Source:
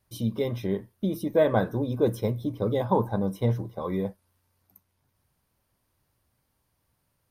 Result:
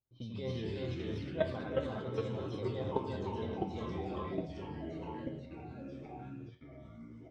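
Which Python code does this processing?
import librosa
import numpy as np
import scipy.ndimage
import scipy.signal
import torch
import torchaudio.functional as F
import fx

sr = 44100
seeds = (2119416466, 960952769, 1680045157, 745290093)

y = fx.comb(x, sr, ms=4.6, depth=0.85, at=(2.93, 3.87))
y = fx.echo_multitap(y, sr, ms=(88, 342, 399), db=(-8.0, -4.5, -6.5))
y = fx.level_steps(y, sr, step_db=17)
y = fx.high_shelf(y, sr, hz=2800.0, db=11.0)
y = fx.comb_fb(y, sr, f0_hz=130.0, decay_s=0.22, harmonics='all', damping=0.0, mix_pct=80)
y = fx.env_lowpass(y, sr, base_hz=630.0, full_db=-38.5)
y = fx.echo_pitch(y, sr, ms=96, semitones=-3, count=3, db_per_echo=-3.0)
y = scipy.signal.sosfilt(scipy.signal.butter(4, 4700.0, 'lowpass', fs=sr, output='sos'), y)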